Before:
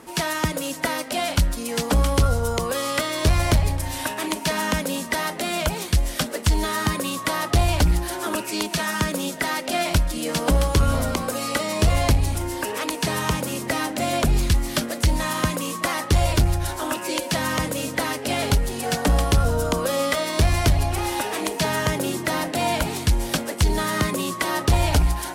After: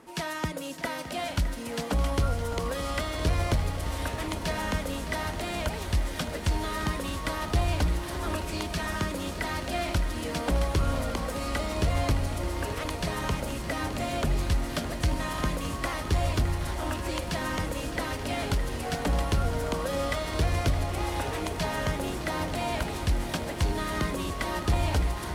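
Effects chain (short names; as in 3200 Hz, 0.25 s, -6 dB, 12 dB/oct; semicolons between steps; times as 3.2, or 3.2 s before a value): high shelf 5800 Hz -7 dB; on a send: diffused feedback echo 0.924 s, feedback 73%, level -11.5 dB; on the sum: lo-fi delay 0.614 s, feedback 80%, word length 8-bit, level -13 dB; gain -7.5 dB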